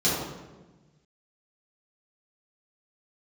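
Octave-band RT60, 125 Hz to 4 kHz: 2.0, 1.6, 1.3, 1.1, 0.95, 0.80 seconds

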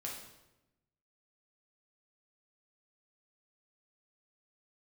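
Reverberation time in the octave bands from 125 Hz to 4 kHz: 1.4, 1.2, 1.0, 0.90, 0.80, 0.75 seconds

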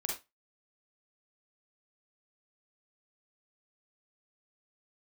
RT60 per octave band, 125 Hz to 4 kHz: 0.25, 0.20, 0.20, 0.20, 0.20, 0.20 seconds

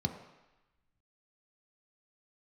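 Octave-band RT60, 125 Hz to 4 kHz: 0.85, 0.85, 0.95, 1.1, 1.2, 1.1 seconds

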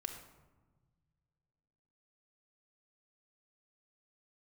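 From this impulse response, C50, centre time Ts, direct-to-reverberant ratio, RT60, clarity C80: 6.5 dB, 25 ms, 4.0 dB, 1.3 s, 8.5 dB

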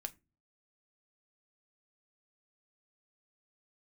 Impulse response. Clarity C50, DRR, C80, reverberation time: 23.0 dB, 7.5 dB, 29.5 dB, 0.25 s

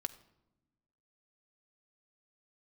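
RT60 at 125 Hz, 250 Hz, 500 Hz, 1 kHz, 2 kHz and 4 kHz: 1.5, 1.6, 1.0, 0.85, 0.65, 0.60 seconds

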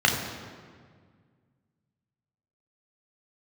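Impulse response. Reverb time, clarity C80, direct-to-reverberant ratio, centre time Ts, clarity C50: 1.8 s, 6.5 dB, 0.0 dB, 48 ms, 5.0 dB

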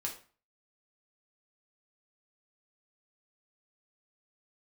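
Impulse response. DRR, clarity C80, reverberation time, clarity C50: −1.5 dB, 14.5 dB, 0.40 s, 9.5 dB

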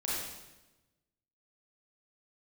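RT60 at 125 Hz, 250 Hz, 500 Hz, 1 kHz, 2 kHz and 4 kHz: 1.5, 1.3, 1.1, 1.0, 0.95, 0.95 seconds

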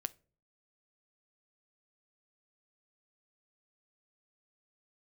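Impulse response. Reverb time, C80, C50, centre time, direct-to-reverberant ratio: 0.40 s, 30.0 dB, 23.5 dB, 2 ms, 14.0 dB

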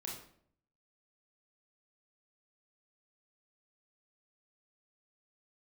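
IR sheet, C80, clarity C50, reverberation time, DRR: 8.0 dB, 4.0 dB, 0.60 s, −3.0 dB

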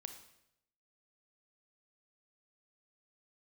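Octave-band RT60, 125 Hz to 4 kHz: 0.95, 0.80, 0.85, 0.75, 0.75, 0.75 seconds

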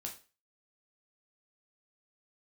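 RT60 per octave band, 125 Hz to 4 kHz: 0.30, 0.35, 0.35, 0.35, 0.35, 0.35 seconds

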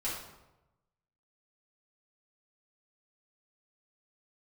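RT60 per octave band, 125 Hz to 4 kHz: 1.3, 1.0, 1.0, 0.95, 0.75, 0.65 seconds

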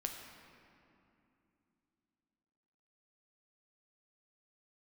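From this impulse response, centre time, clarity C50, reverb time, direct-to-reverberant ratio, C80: 63 ms, 4.5 dB, 2.8 s, 2.5 dB, 5.5 dB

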